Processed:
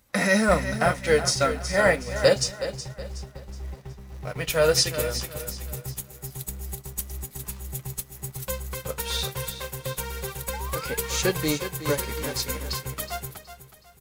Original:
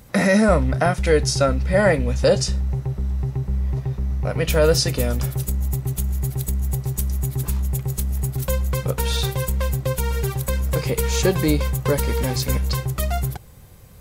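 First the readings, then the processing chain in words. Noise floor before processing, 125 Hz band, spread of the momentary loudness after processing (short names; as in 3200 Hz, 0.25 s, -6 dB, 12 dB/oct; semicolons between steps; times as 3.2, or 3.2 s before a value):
-43 dBFS, -12.0 dB, 16 LU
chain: tilt shelf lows -4.5 dB, about 690 Hz; painted sound rise, 10.53–10.97, 810–1700 Hz -30 dBFS; in parallel at -10.5 dB: bit-crush 5-bit; on the sum: flange 0.28 Hz, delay 3.1 ms, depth 8.6 ms, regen -49%; on a send: feedback echo 0.37 s, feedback 44%, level -8 dB; on the sum: upward expander 1.5:1, over -37 dBFS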